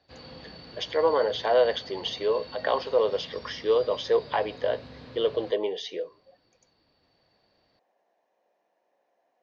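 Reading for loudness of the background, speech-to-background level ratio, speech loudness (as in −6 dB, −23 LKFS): −45.0 LKFS, 18.0 dB, −27.0 LKFS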